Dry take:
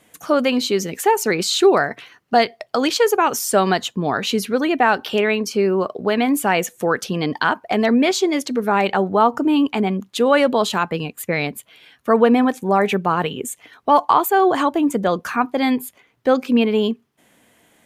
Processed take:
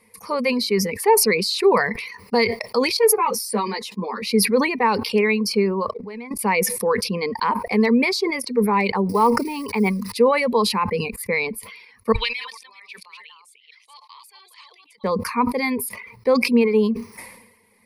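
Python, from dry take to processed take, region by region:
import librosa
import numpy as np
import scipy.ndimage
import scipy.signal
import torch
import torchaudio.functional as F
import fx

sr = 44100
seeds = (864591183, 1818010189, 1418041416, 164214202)

y = fx.chain(x, sr, fx.highpass(hz=180.0, slope=24),
    fx.ensemble(), at=(2.97, 4.22))
y = fx.chain(y, sr, fx.law_mismatch(coded='A'),
    fx.bessel_lowpass(hz=5500.0, order=2),
    fx.level_steps(step_db=16), at=(5.91, 6.39))
y = fx.chain(y, sr, fx.low_shelf(hz=120.0, db=-6.0),
    fx.quant_companded(bits=6),
    fx.sustainer(db_per_s=120.0), at=(9.09, 10.12))
y = fx.chain(y, sr, fx.reverse_delay(ms=227, wet_db=-3.5),
    fx.ladder_bandpass(hz=3800.0, resonance_pct=55), at=(12.12, 15.04))
y = fx.dereverb_blind(y, sr, rt60_s=0.58)
y = fx.ripple_eq(y, sr, per_octave=0.89, db=17)
y = fx.sustainer(y, sr, db_per_s=60.0)
y = F.gain(torch.from_numpy(y), -5.5).numpy()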